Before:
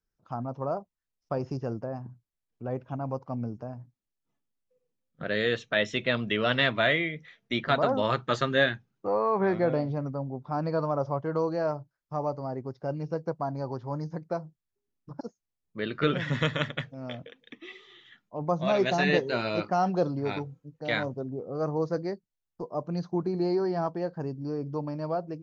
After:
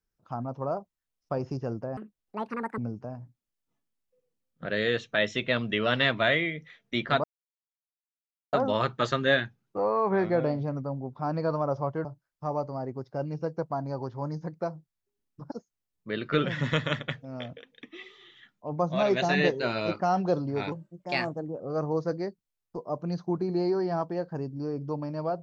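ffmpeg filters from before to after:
ffmpeg -i in.wav -filter_complex "[0:a]asplit=7[link_01][link_02][link_03][link_04][link_05][link_06][link_07];[link_01]atrim=end=1.974[link_08];[link_02]atrim=start=1.97:end=3.36,asetpts=PTS-STARTPTS,asetrate=75852,aresample=44100[link_09];[link_03]atrim=start=3.356:end=7.82,asetpts=PTS-STARTPTS,afade=type=out:start_time=4.46:duration=0.004:curve=hsin,apad=pad_dur=1.29[link_10];[link_04]atrim=start=7.82:end=11.342,asetpts=PTS-STARTPTS,afade=type=in:duration=0.004:curve=hsin[link_11];[link_05]atrim=start=11.738:end=20.414[link_12];[link_06]atrim=start=20.41:end=21.45,asetpts=PTS-STARTPTS,asetrate=52038,aresample=44100[link_13];[link_07]atrim=start=21.446[link_14];[link_08][link_09]acrossfade=duration=0.004:curve1=hsin:curve2=hsin[link_15];[link_10][link_11]concat=n=2:v=0:a=1[link_16];[link_15][link_16]acrossfade=duration=0.004:curve1=hsin:curve2=hsin[link_17];[link_17][link_12]acrossfade=duration=0.004:curve1=hsin:curve2=hsin[link_18];[link_18][link_13]acrossfade=duration=0.004:curve1=hsin:curve2=hsin[link_19];[link_19][link_14]acrossfade=duration=0.004:curve1=hsin:curve2=hsin" out.wav

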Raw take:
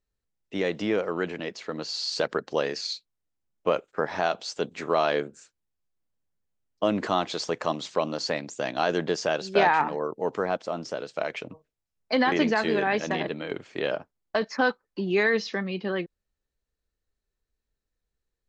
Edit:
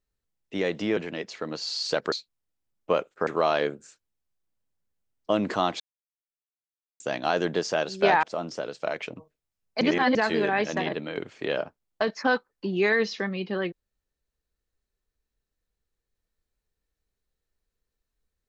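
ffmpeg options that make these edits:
ffmpeg -i in.wav -filter_complex "[0:a]asplit=9[link_01][link_02][link_03][link_04][link_05][link_06][link_07][link_08][link_09];[link_01]atrim=end=0.972[link_10];[link_02]atrim=start=1.238:end=2.392[link_11];[link_03]atrim=start=2.888:end=4.042[link_12];[link_04]atrim=start=4.798:end=7.33,asetpts=PTS-STARTPTS,afade=type=out:start_time=2.528:duration=0.004:curve=hsin[link_13];[link_05]atrim=start=7.33:end=8.53,asetpts=PTS-STARTPTS,volume=0[link_14];[link_06]atrim=start=8.53:end=9.762,asetpts=PTS-STARTPTS,afade=type=in:duration=0.004:curve=hsin[link_15];[link_07]atrim=start=10.568:end=12.152[link_16];[link_08]atrim=start=12.148:end=12.492,asetpts=PTS-STARTPTS,areverse[link_17];[link_09]atrim=start=12.488[link_18];[link_10][link_11]acrossfade=duration=0.004:curve1=hsin:curve2=hsin[link_19];[link_19][link_12]acrossfade=duration=0.004:curve1=hsin:curve2=hsin[link_20];[link_13][link_14][link_15]concat=n=3:v=0:a=1[link_21];[link_20][link_21]acrossfade=duration=0.004:curve1=hsin:curve2=hsin[link_22];[link_22][link_16]acrossfade=duration=0.004:curve1=hsin:curve2=hsin[link_23];[link_23][link_17]acrossfade=duration=0.004:curve1=hsin:curve2=hsin[link_24];[link_24][link_18]acrossfade=duration=0.004:curve1=hsin:curve2=hsin" out.wav

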